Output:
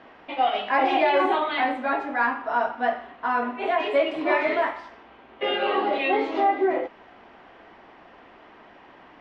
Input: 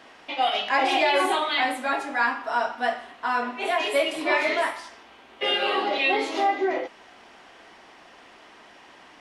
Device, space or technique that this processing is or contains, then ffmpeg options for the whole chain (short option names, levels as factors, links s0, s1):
phone in a pocket: -af "lowpass=3400,lowshelf=f=170:g=3,highshelf=f=2400:g=-10.5,volume=1.33"